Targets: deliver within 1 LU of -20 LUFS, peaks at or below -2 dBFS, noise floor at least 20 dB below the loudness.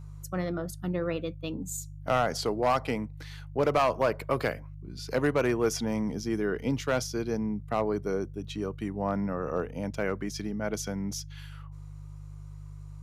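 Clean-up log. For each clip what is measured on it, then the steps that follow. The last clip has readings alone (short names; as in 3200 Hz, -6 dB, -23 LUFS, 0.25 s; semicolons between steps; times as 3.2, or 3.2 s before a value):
clipped 0.5%; flat tops at -18.0 dBFS; hum 50 Hz; harmonics up to 150 Hz; hum level -41 dBFS; loudness -30.5 LUFS; peak -18.0 dBFS; loudness target -20.0 LUFS
-> clip repair -18 dBFS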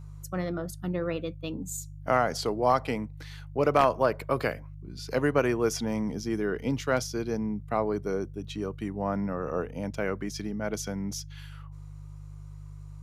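clipped 0.0%; hum 50 Hz; harmonics up to 150 Hz; hum level -40 dBFS
-> de-hum 50 Hz, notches 3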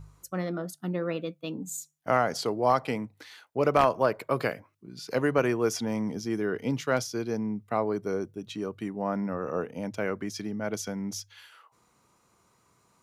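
hum none; loudness -30.0 LUFS; peak -9.0 dBFS; loudness target -20.0 LUFS
-> gain +10 dB; limiter -2 dBFS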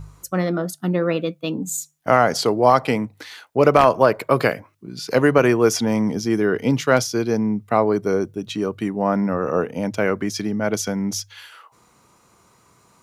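loudness -20.0 LUFS; peak -2.0 dBFS; noise floor -58 dBFS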